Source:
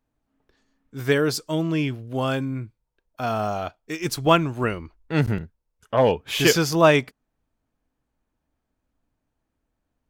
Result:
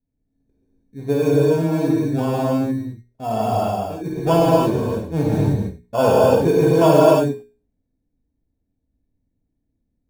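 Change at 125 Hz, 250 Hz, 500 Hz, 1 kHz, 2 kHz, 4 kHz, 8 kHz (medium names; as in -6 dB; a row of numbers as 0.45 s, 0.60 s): +5.5 dB, +6.0 dB, +6.5 dB, +4.0 dB, -6.5 dB, -6.0 dB, -5.0 dB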